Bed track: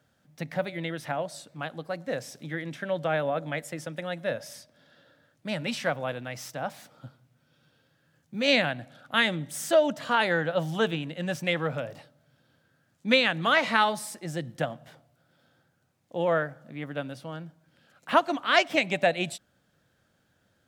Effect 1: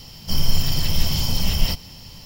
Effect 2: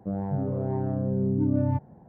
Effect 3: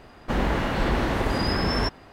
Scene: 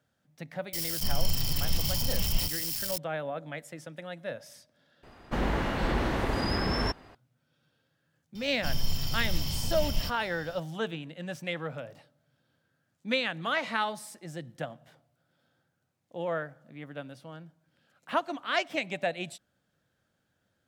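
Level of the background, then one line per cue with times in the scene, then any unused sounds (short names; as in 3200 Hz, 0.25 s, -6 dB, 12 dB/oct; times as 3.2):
bed track -7 dB
0.73 add 1 -9 dB + switching spikes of -17 dBFS
5.03 replace with 3 -4.5 dB
8.35 add 1 -10.5 dB + whine 3600 Hz -46 dBFS
not used: 2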